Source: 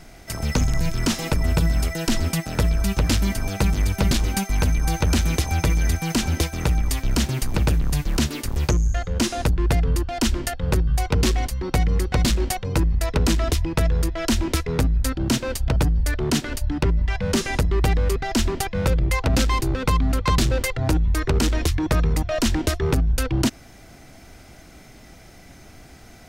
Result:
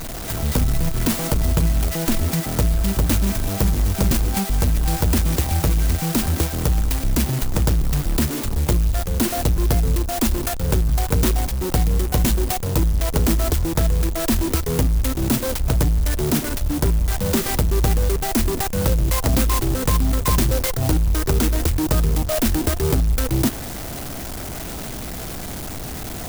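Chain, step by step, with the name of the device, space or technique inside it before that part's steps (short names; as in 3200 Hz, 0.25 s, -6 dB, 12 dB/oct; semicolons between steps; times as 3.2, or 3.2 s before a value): early CD player with a faulty converter (zero-crossing step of -25 dBFS; clock jitter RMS 0.12 ms)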